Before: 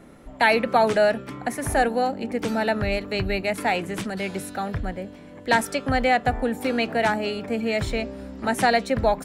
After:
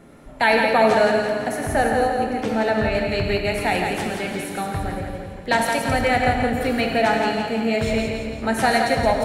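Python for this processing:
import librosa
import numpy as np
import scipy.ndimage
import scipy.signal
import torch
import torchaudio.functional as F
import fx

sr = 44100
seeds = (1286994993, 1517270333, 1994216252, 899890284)

y = fx.high_shelf(x, sr, hz=5500.0, db=-7.0, at=(1.61, 2.95))
y = fx.echo_split(y, sr, split_hz=380.0, low_ms=256, high_ms=170, feedback_pct=52, wet_db=-5)
y = fx.rev_gated(y, sr, seeds[0], gate_ms=170, shape='flat', drr_db=3.5)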